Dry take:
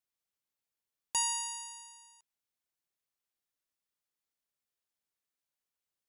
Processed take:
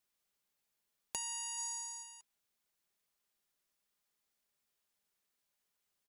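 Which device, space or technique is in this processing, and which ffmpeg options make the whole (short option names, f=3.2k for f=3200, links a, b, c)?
serial compression, peaks first: -filter_complex "[0:a]acompressor=threshold=-40dB:ratio=6,acompressor=threshold=-52dB:ratio=1.5,aecho=1:1:4.9:0.3,asplit=3[a][b][c];[a]afade=t=out:st=1.57:d=0.02[d];[b]aecho=1:1:0.9:0.62,afade=t=in:st=1.57:d=0.02,afade=t=out:st=2.02:d=0.02[e];[c]afade=t=in:st=2.02:d=0.02[f];[d][e][f]amix=inputs=3:normalize=0,volume=5.5dB"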